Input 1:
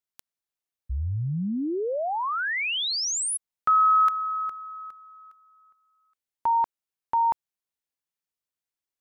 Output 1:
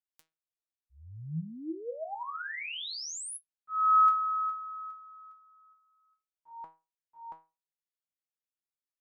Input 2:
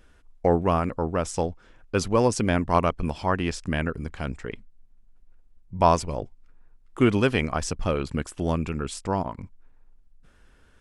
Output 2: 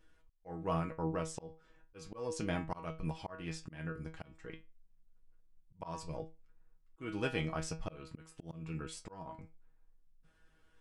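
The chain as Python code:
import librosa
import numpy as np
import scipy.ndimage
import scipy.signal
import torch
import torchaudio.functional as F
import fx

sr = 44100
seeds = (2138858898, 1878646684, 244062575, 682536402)

y = fx.comb_fb(x, sr, f0_hz=160.0, decay_s=0.26, harmonics='all', damping=0.2, mix_pct=90)
y = fx.auto_swell(y, sr, attack_ms=305.0)
y = y * librosa.db_to_amplitude(-1.0)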